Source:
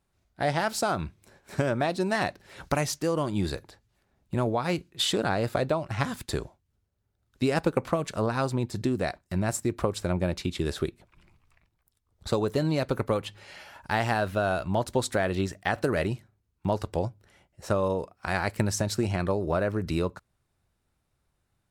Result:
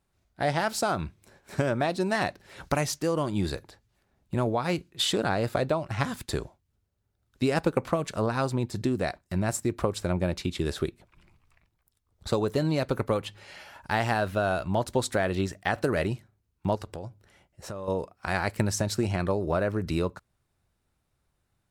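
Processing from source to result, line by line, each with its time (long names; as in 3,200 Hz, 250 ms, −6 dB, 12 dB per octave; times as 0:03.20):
0:16.75–0:17.88: downward compressor 4 to 1, threshold −35 dBFS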